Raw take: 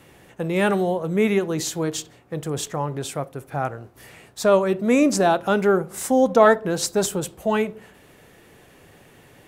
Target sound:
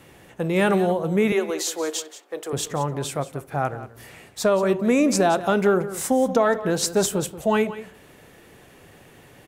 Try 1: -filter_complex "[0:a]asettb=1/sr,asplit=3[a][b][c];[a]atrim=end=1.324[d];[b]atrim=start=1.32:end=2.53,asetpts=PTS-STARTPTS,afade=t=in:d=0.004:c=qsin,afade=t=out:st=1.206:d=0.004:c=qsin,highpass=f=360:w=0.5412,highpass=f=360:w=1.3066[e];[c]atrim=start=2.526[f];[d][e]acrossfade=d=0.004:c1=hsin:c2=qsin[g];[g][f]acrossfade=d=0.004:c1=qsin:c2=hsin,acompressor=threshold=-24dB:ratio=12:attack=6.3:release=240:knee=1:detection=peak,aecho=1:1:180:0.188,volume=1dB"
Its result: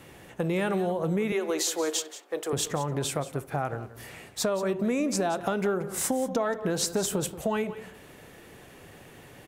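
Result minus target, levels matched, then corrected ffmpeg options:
compressor: peak gain reduction +8.5 dB
-filter_complex "[0:a]asettb=1/sr,asplit=3[a][b][c];[a]atrim=end=1.324[d];[b]atrim=start=1.32:end=2.53,asetpts=PTS-STARTPTS,afade=t=in:d=0.004:c=qsin,afade=t=out:st=1.206:d=0.004:c=qsin,highpass=f=360:w=0.5412,highpass=f=360:w=1.3066[e];[c]atrim=start=2.526[f];[d][e]acrossfade=d=0.004:c1=hsin:c2=qsin[g];[g][f]acrossfade=d=0.004:c1=qsin:c2=hsin,acompressor=threshold=-14.5dB:ratio=12:attack=6.3:release=240:knee=1:detection=peak,aecho=1:1:180:0.188,volume=1dB"

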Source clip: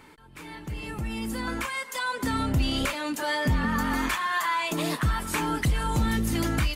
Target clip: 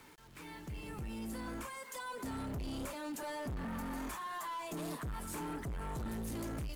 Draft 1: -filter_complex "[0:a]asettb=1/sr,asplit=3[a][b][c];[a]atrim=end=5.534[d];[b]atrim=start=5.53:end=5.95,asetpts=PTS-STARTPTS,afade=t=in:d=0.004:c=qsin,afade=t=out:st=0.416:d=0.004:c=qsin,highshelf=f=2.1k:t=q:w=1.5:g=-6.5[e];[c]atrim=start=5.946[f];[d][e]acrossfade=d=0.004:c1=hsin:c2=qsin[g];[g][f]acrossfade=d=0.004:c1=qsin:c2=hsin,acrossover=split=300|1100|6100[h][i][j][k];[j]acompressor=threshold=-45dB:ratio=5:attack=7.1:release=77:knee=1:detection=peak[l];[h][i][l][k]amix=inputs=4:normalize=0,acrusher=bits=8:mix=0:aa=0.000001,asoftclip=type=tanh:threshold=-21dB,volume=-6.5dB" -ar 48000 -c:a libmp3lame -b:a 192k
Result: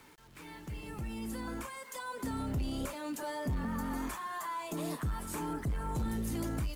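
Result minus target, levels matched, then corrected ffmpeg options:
soft clip: distortion -9 dB
-filter_complex "[0:a]asettb=1/sr,asplit=3[a][b][c];[a]atrim=end=5.534[d];[b]atrim=start=5.53:end=5.95,asetpts=PTS-STARTPTS,afade=t=in:d=0.004:c=qsin,afade=t=out:st=0.416:d=0.004:c=qsin,highshelf=f=2.1k:t=q:w=1.5:g=-6.5[e];[c]atrim=start=5.946[f];[d][e]acrossfade=d=0.004:c1=hsin:c2=qsin[g];[g][f]acrossfade=d=0.004:c1=qsin:c2=hsin,acrossover=split=300|1100|6100[h][i][j][k];[j]acompressor=threshold=-45dB:ratio=5:attack=7.1:release=77:knee=1:detection=peak[l];[h][i][l][k]amix=inputs=4:normalize=0,acrusher=bits=8:mix=0:aa=0.000001,asoftclip=type=tanh:threshold=-30.5dB,volume=-6.5dB" -ar 48000 -c:a libmp3lame -b:a 192k

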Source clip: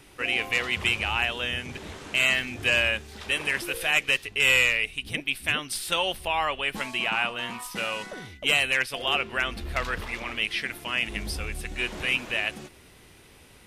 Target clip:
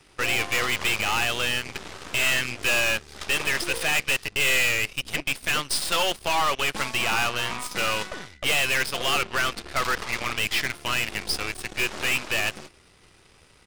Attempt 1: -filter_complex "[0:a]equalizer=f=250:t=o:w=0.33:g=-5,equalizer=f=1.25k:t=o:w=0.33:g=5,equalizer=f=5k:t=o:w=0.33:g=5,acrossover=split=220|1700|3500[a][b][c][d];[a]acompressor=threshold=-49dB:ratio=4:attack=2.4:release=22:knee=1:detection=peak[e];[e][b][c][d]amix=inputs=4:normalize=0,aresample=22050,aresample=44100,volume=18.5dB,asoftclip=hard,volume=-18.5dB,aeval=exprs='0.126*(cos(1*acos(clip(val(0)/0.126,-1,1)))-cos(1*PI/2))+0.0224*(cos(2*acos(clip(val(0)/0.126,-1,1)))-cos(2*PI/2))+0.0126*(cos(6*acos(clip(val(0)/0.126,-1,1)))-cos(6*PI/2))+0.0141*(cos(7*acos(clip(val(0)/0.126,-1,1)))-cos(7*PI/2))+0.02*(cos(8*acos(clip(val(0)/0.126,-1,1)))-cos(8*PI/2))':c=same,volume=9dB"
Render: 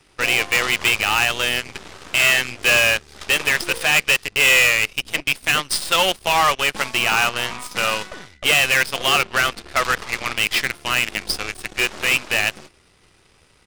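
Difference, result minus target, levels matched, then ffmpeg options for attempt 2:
overloaded stage: distortion -8 dB
-filter_complex "[0:a]equalizer=f=250:t=o:w=0.33:g=-5,equalizer=f=1.25k:t=o:w=0.33:g=5,equalizer=f=5k:t=o:w=0.33:g=5,acrossover=split=220|1700|3500[a][b][c][d];[a]acompressor=threshold=-49dB:ratio=4:attack=2.4:release=22:knee=1:detection=peak[e];[e][b][c][d]amix=inputs=4:normalize=0,aresample=22050,aresample=44100,volume=27dB,asoftclip=hard,volume=-27dB,aeval=exprs='0.126*(cos(1*acos(clip(val(0)/0.126,-1,1)))-cos(1*PI/2))+0.0224*(cos(2*acos(clip(val(0)/0.126,-1,1)))-cos(2*PI/2))+0.0126*(cos(6*acos(clip(val(0)/0.126,-1,1)))-cos(6*PI/2))+0.0141*(cos(7*acos(clip(val(0)/0.126,-1,1)))-cos(7*PI/2))+0.02*(cos(8*acos(clip(val(0)/0.126,-1,1)))-cos(8*PI/2))':c=same,volume=9dB"

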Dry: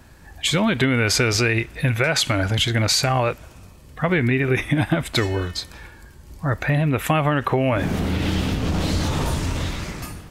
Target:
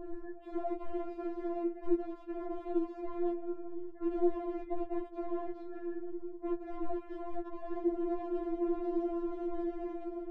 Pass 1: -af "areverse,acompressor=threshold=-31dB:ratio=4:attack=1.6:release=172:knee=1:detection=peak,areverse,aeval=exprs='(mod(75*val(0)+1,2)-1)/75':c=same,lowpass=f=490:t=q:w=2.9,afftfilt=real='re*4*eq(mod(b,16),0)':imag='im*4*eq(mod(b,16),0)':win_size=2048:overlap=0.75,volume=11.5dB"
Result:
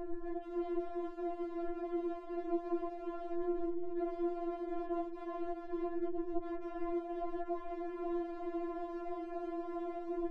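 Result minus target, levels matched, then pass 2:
compressor: peak gain reduction -8.5 dB
-af "areverse,acompressor=threshold=-42.5dB:ratio=4:attack=1.6:release=172:knee=1:detection=peak,areverse,aeval=exprs='(mod(75*val(0)+1,2)-1)/75':c=same,lowpass=f=490:t=q:w=2.9,afftfilt=real='re*4*eq(mod(b,16),0)':imag='im*4*eq(mod(b,16),0)':win_size=2048:overlap=0.75,volume=11.5dB"

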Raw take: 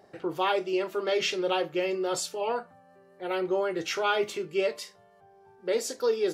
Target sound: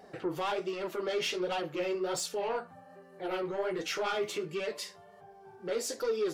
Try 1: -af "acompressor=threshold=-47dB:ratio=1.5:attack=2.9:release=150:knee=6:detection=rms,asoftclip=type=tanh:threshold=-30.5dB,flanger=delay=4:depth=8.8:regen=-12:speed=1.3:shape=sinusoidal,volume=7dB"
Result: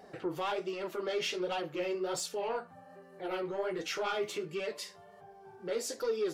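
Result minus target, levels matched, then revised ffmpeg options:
compressor: peak gain reduction +2.5 dB
-af "acompressor=threshold=-39.5dB:ratio=1.5:attack=2.9:release=150:knee=6:detection=rms,asoftclip=type=tanh:threshold=-30.5dB,flanger=delay=4:depth=8.8:regen=-12:speed=1.3:shape=sinusoidal,volume=7dB"

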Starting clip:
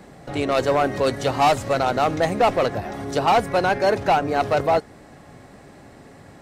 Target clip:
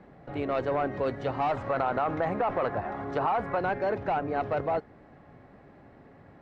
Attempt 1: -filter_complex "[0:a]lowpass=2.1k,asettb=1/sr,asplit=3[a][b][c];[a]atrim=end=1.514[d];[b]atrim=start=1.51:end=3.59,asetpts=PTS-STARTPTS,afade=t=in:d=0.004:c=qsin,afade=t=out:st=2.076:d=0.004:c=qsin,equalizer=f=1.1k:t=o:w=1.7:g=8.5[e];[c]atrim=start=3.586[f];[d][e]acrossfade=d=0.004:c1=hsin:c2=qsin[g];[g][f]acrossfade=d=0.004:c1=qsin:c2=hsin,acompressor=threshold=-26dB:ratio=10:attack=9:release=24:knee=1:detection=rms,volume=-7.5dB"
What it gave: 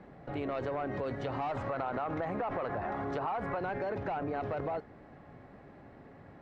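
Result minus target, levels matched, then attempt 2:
compressor: peak gain reduction +7.5 dB
-filter_complex "[0:a]lowpass=2.1k,asettb=1/sr,asplit=3[a][b][c];[a]atrim=end=1.514[d];[b]atrim=start=1.51:end=3.59,asetpts=PTS-STARTPTS,afade=t=in:d=0.004:c=qsin,afade=t=out:st=2.076:d=0.004:c=qsin,equalizer=f=1.1k:t=o:w=1.7:g=8.5[e];[c]atrim=start=3.586[f];[d][e]acrossfade=d=0.004:c1=hsin:c2=qsin[g];[g][f]acrossfade=d=0.004:c1=qsin:c2=hsin,acompressor=threshold=-17.5dB:ratio=10:attack=9:release=24:knee=1:detection=rms,volume=-7.5dB"

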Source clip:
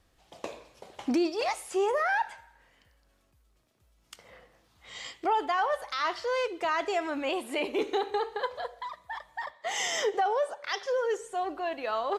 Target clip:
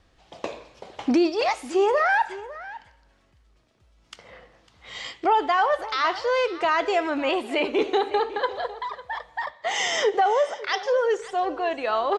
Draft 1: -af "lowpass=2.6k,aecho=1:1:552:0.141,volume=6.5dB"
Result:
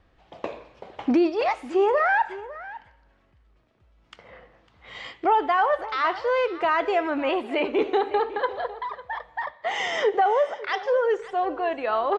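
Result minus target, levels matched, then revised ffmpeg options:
8000 Hz band -12.0 dB
-af "lowpass=5.7k,aecho=1:1:552:0.141,volume=6.5dB"

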